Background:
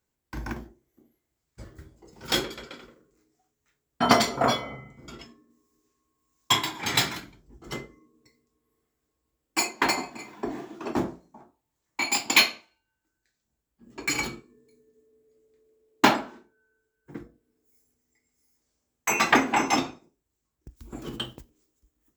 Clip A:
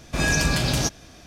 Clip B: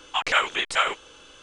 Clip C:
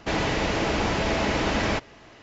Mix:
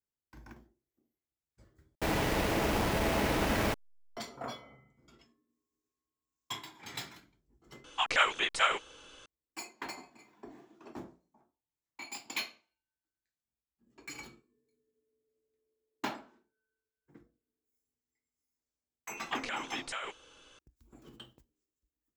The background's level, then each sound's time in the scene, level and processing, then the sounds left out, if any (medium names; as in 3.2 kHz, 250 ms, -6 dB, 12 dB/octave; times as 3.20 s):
background -18 dB
1.95 s: replace with C -5 dB + send-on-delta sampling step -28 dBFS
7.84 s: add B -5 dB
19.17 s: add B -9.5 dB + compression 4:1, threshold -26 dBFS
not used: A